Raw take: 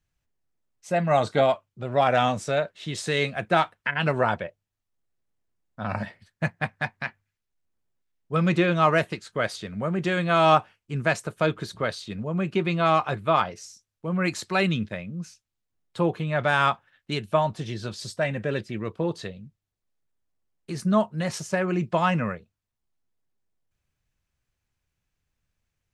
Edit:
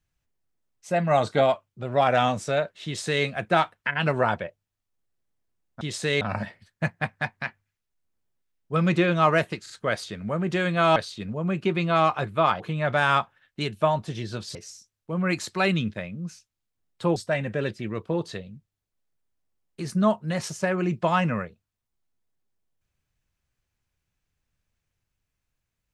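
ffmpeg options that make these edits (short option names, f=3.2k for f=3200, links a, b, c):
-filter_complex "[0:a]asplit=9[a][b][c][d][e][f][g][h][i];[a]atrim=end=5.812[j];[b]atrim=start=2.848:end=3.252[k];[c]atrim=start=5.808:end=9.262[l];[d]atrim=start=9.218:end=9.262[m];[e]atrim=start=9.218:end=10.482[n];[f]atrim=start=11.858:end=13.502[o];[g]atrim=start=16.108:end=18.062[p];[h]atrim=start=13.498:end=16.112[q];[i]atrim=start=18.058[r];[j][k]acrossfade=d=0.004:c1=hsin:c2=hsin[s];[s][l]acrossfade=d=0.004:c1=hsin:c2=hsin[t];[t][m]acrossfade=d=0.004:c1=hsin:c2=hsin[u];[u][n]acrossfade=d=0.004:c1=hsin:c2=hsin[v];[v][o]acrossfade=d=0.004:c1=hsin:c2=hsin[w];[w][p]acrossfade=d=0.004:c1=hsin:c2=hsin[x];[x][q]acrossfade=d=0.004:c1=hsin:c2=hsin[y];[y][r]acrossfade=d=0.004:c1=hsin:c2=hsin"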